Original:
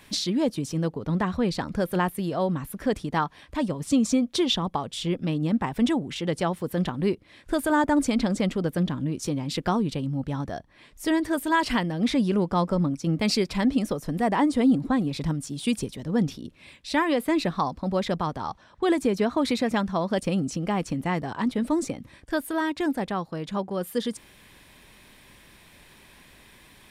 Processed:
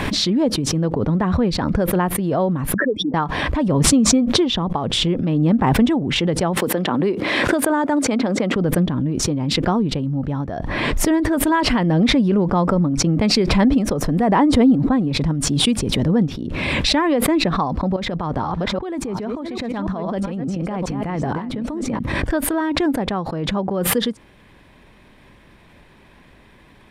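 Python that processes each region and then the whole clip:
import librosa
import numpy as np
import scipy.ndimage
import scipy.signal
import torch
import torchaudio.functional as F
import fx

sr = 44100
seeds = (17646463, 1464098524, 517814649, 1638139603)

y = fx.chain(x, sr, fx.spec_expand(power=3.1),
    fx.highpass(hz=290.0, slope=24), at=(2.74, 3.14))
y = fx.chain(y, sr, fx.highpass(hz=270.0, slope=12),
    fx.band_squash(depth_pct=70), at=(6.57, 8.56))
y = fx.chain(y, sr, fx.reverse_delay(ms=414, wet_db=-8.0),
    fx.over_compress(threshold_db=-32.0, ratio=-1.0), at=(17.96, 21.99))
y = fx.lowpass(y, sr, hz=1200.0, slope=6)
y = fx.pre_swell(y, sr, db_per_s=21.0)
y = y * 10.0 ** (6.0 / 20.0)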